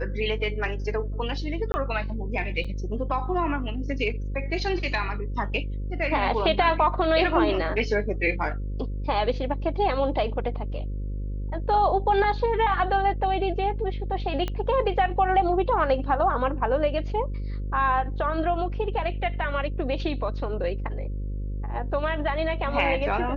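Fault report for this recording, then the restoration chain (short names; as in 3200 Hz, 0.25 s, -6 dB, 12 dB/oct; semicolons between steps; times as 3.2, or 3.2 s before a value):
buzz 50 Hz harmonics 11 -30 dBFS
1.72–1.74 gap 20 ms
2.64–2.65 gap 5.6 ms
14.48 pop -16 dBFS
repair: de-click; de-hum 50 Hz, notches 11; interpolate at 1.72, 20 ms; interpolate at 2.64, 5.6 ms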